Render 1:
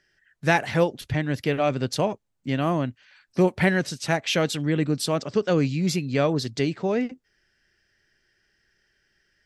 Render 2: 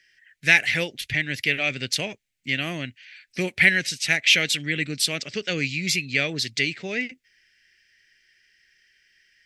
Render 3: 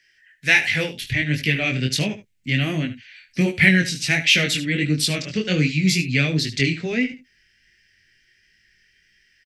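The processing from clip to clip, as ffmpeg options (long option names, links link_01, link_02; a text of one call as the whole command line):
ffmpeg -i in.wav -af "highshelf=frequency=1500:width_type=q:width=3:gain=12.5,volume=-7dB" out.wav
ffmpeg -i in.wav -filter_complex "[0:a]aecho=1:1:74:0.211,acrossover=split=280|1200[link_01][link_02][link_03];[link_01]dynaudnorm=framelen=660:gausssize=3:maxgain=11dB[link_04];[link_04][link_02][link_03]amix=inputs=3:normalize=0,flanger=delay=19:depth=5:speed=1.4,volume=4dB" out.wav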